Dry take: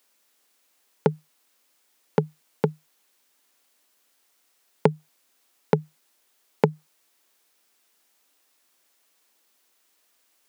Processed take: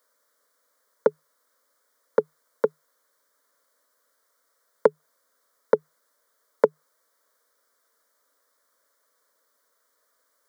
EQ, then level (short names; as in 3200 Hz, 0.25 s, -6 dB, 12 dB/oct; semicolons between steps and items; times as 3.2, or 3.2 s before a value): HPF 340 Hz 24 dB/oct; high shelf 2500 Hz -11.5 dB; fixed phaser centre 530 Hz, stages 8; +7.0 dB